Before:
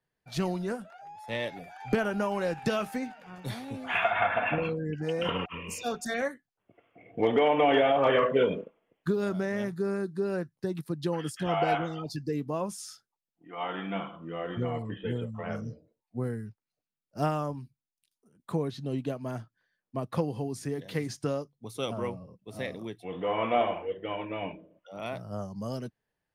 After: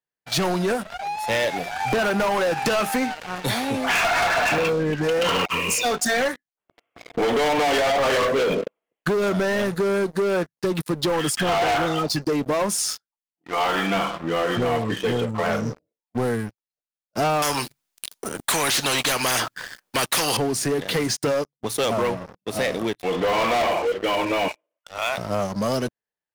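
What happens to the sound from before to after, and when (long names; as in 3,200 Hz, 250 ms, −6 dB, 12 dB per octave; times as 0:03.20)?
0:17.42–0:20.37: every bin compressed towards the loudest bin 4 to 1
0:24.48–0:25.18: high-pass filter 960 Hz
whole clip: low-shelf EQ 260 Hz −12 dB; leveller curve on the samples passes 5; downward compressor, threshold −21 dBFS; level +1.5 dB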